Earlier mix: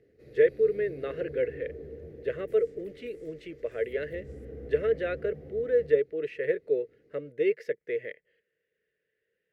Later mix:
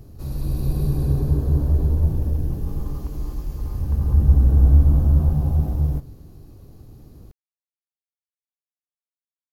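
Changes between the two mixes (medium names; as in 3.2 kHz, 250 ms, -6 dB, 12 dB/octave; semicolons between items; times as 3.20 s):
speech: muted; second sound: add resonant low-pass 980 Hz; master: remove two resonant band-passes 960 Hz, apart 2.1 oct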